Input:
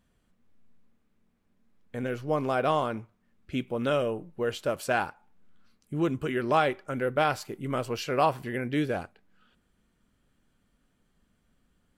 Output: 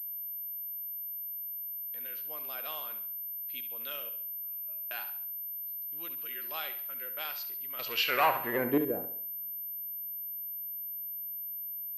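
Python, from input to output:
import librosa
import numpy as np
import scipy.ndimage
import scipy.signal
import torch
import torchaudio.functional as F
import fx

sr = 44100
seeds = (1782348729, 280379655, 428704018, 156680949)

p1 = fx.octave_resonator(x, sr, note='D#', decay_s=0.46, at=(4.09, 4.91))
p2 = fx.leveller(p1, sr, passes=3, at=(7.79, 8.78))
p3 = fx.filter_sweep_bandpass(p2, sr, from_hz=4600.0, to_hz=360.0, start_s=7.77, end_s=8.94, q=1.6)
p4 = p3 + fx.echo_feedback(p3, sr, ms=69, feedback_pct=42, wet_db=-11, dry=0)
y = fx.pwm(p4, sr, carrier_hz=13000.0)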